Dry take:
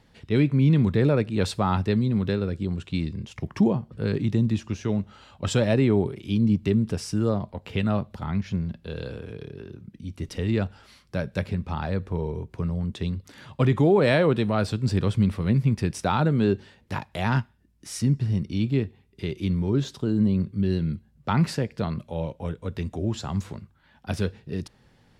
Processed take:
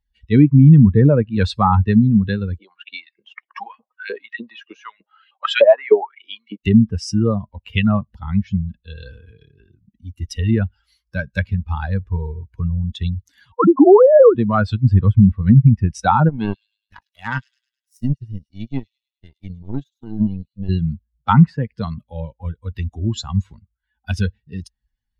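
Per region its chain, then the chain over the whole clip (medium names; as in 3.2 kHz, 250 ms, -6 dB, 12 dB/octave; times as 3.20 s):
2.58–6.65 s: low-pass 3.6 kHz + LFO high-pass saw up 3.3 Hz 400–2400 Hz
13.52–14.35 s: formants replaced by sine waves + steep low-pass 1.5 kHz 72 dB/octave + three bands compressed up and down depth 40%
16.29–20.69 s: power-law waveshaper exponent 2 + feedback echo behind a high-pass 104 ms, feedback 65%, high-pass 4.1 kHz, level -6 dB
whole clip: expander on every frequency bin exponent 2; low-pass that closes with the level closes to 1.1 kHz, closed at -25.5 dBFS; loudness maximiser +17 dB; trim -1 dB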